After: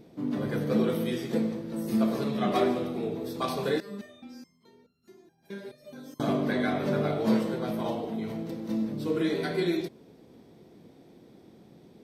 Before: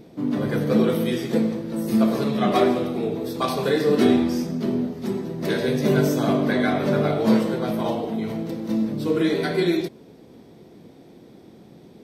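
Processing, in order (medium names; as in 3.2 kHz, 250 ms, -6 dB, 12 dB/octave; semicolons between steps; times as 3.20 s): 3.80–6.20 s: resonator arpeggio 4.7 Hz 200–1400 Hz; trim -6.5 dB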